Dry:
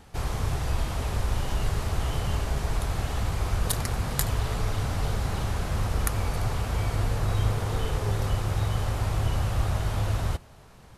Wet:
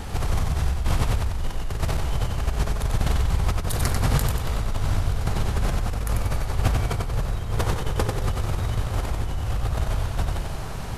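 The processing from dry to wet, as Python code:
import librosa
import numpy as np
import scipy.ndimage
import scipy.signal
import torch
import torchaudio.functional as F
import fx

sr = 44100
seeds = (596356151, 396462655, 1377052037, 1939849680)

p1 = fx.low_shelf(x, sr, hz=64.0, db=8.5)
p2 = fx.over_compress(p1, sr, threshold_db=-31.0, ratio=-1.0)
p3 = p2 + fx.echo_feedback(p2, sr, ms=93, feedback_pct=45, wet_db=-4, dry=0)
y = F.gain(torch.from_numpy(p3), 6.5).numpy()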